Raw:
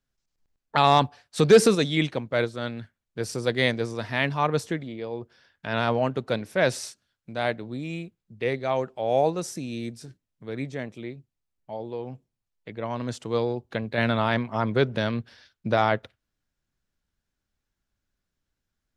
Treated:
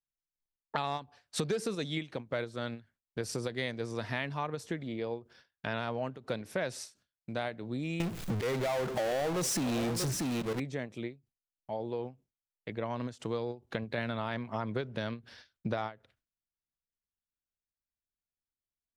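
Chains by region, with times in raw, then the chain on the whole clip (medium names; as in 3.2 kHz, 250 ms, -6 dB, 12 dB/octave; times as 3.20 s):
8.00–10.60 s: delay 636 ms -20.5 dB + slow attack 696 ms + power-law waveshaper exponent 0.35
whole clip: gate with hold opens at -49 dBFS; compression 6:1, threshold -31 dBFS; endings held to a fixed fall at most 230 dB/s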